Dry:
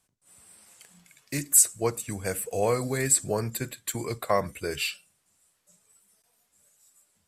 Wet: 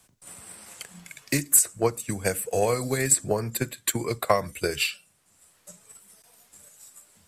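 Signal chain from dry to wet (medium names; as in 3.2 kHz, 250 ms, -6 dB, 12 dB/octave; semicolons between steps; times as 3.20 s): transient shaper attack +8 dB, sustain 0 dB; three bands compressed up and down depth 40%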